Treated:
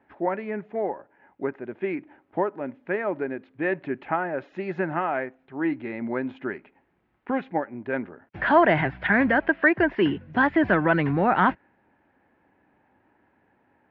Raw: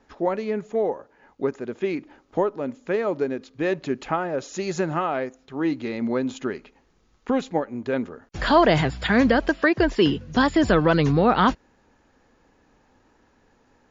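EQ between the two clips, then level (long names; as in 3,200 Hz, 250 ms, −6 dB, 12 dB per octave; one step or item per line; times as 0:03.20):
dynamic equaliser 1,600 Hz, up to +5 dB, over −37 dBFS, Q 1
loudspeaker in its box 120–2,300 Hz, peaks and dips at 150 Hz −4 dB, 240 Hz −5 dB, 470 Hz −9 dB, 1,200 Hz −8 dB
0.0 dB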